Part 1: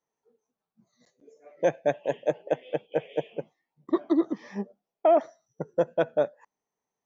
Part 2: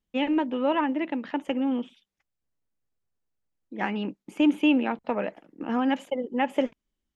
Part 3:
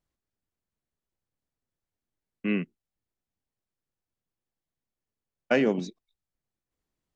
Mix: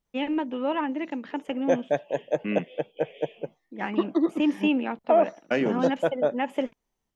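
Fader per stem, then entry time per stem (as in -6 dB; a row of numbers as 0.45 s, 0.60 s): 0.0 dB, -2.5 dB, -2.0 dB; 0.05 s, 0.00 s, 0.00 s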